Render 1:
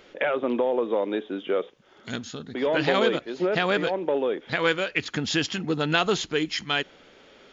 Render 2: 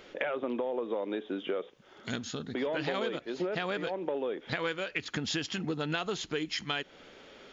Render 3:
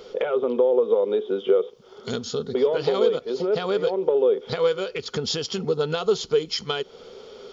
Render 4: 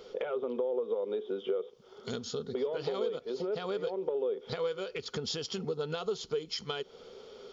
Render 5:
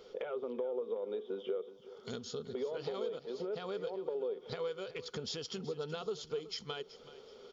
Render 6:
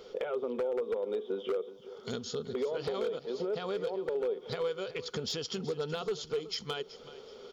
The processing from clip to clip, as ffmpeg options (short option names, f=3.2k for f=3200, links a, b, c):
-af "acompressor=threshold=-31dB:ratio=4"
-af "superequalizer=6b=0.447:7b=3.16:11b=0.316:12b=0.447:14b=1.78,volume=5.5dB"
-af "acompressor=threshold=-26dB:ratio=2,volume=-7dB"
-af "aecho=1:1:376|752|1128:0.158|0.0491|0.0152,volume=-5dB"
-af "aeval=exprs='0.0299*(abs(mod(val(0)/0.0299+3,4)-2)-1)':c=same,volume=5dB"